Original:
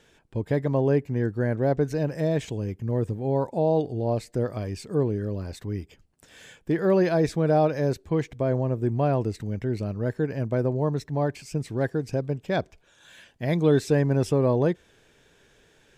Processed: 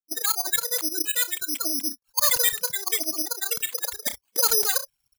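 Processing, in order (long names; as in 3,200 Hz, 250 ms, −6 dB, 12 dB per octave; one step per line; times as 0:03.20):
spectral dynamics exaggerated over time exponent 3
in parallel at −8 dB: wave folding −25.5 dBFS
on the sum: repeating echo 99 ms, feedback 19%, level −22.5 dB
reversed playback
upward compression, threshold −44 dBFS
reversed playback
noise gate −51 dBFS, range −17 dB
change of speed 3.08×
noise reduction from a noise print of the clip's start 22 dB
bad sample-rate conversion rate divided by 8×, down none, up zero stuff
envelope flattener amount 50%
level −6 dB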